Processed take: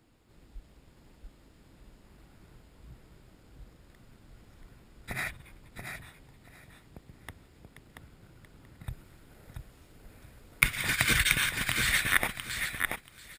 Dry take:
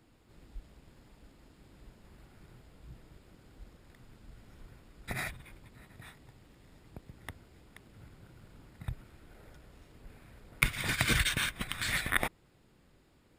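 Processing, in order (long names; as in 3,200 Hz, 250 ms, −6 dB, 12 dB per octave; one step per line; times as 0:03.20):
high-shelf EQ 6,200 Hz +2 dB, from 0:08.87 +8 dB
repeating echo 682 ms, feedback 21%, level −5 dB
dynamic equaliser 1,900 Hz, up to +5 dB, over −42 dBFS, Q 0.99
level −1 dB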